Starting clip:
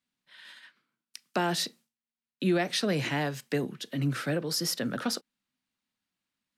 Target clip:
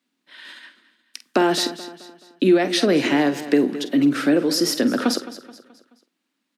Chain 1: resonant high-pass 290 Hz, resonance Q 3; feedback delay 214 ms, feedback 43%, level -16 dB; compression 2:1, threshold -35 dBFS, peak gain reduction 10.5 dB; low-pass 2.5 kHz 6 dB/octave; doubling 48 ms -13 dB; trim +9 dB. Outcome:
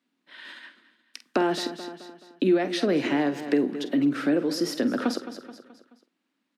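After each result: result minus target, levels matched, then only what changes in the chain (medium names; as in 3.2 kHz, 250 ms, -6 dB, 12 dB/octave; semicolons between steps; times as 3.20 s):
8 kHz band -5.5 dB; compression: peak gain reduction +5.5 dB
change: low-pass 7.9 kHz 6 dB/octave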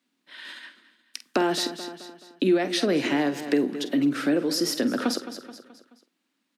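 compression: peak gain reduction +5.5 dB
change: compression 2:1, threshold -24 dBFS, peak gain reduction 5 dB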